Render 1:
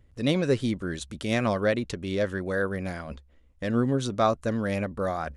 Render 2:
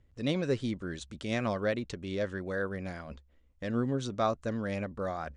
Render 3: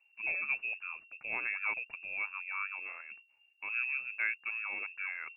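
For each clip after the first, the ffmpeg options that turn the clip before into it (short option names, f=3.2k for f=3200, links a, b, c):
-af "lowpass=f=8.2k:w=0.5412,lowpass=f=8.2k:w=1.3066,volume=-6dB"
-af "lowpass=f=2.4k:t=q:w=0.5098,lowpass=f=2.4k:t=q:w=0.6013,lowpass=f=2.4k:t=q:w=0.9,lowpass=f=2.4k:t=q:w=2.563,afreqshift=-2800,volume=-5dB"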